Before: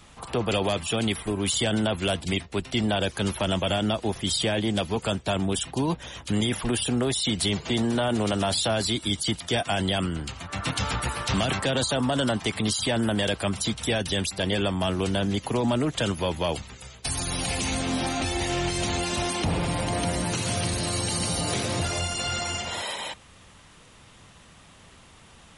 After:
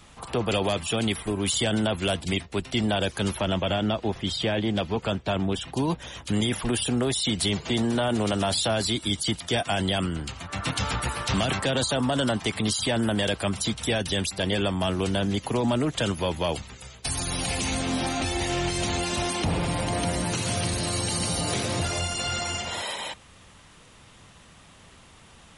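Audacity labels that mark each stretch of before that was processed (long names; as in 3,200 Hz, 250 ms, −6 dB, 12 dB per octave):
3.400000	5.680000	Bessel low-pass filter 3,900 Hz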